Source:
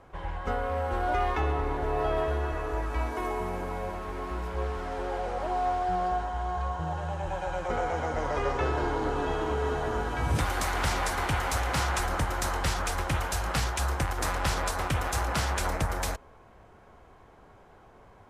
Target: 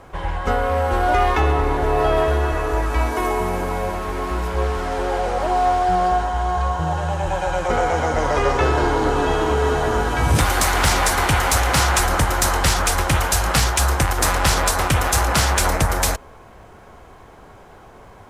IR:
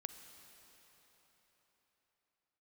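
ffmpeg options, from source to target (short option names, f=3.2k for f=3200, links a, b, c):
-filter_complex "[0:a]highshelf=f=4.7k:g=6.5,asplit=2[a][b];[b]aeval=exprs='clip(val(0),-1,0.0708)':c=same,volume=-4dB[c];[a][c]amix=inputs=2:normalize=0,volume=6dB"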